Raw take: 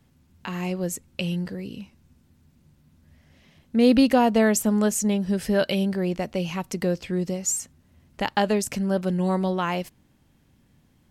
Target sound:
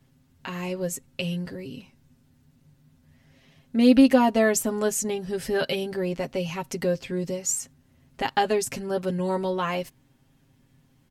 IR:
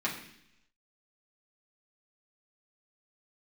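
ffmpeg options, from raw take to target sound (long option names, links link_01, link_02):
-af "aecho=1:1:7.5:0.77,volume=-2.5dB"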